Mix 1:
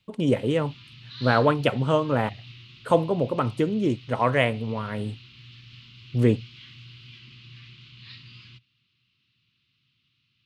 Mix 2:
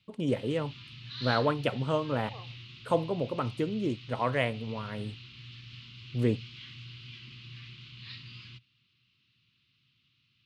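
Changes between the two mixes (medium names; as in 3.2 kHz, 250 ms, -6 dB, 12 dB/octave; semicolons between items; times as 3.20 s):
first voice -7.0 dB; second voice: unmuted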